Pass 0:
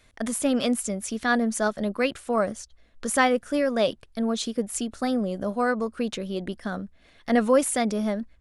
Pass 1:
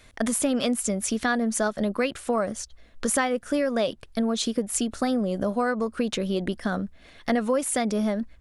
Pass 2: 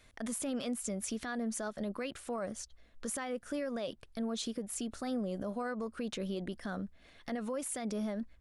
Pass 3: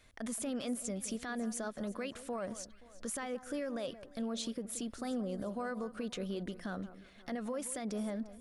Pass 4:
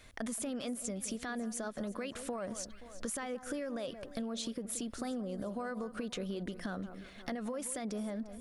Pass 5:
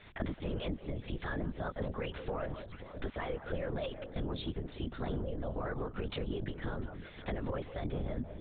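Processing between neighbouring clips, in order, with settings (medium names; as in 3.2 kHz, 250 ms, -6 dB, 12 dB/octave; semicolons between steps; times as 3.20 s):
compression 4:1, threshold -28 dBFS, peak gain reduction 11.5 dB; trim +6 dB
peak limiter -19.5 dBFS, peak gain reduction 9 dB; trim -9 dB
echo whose repeats swap between lows and highs 175 ms, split 1.5 kHz, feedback 63%, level -13.5 dB; trim -1.5 dB
compression, threshold -42 dBFS, peak gain reduction 9.5 dB; trim +6.5 dB
LPC vocoder at 8 kHz whisper; trim +2 dB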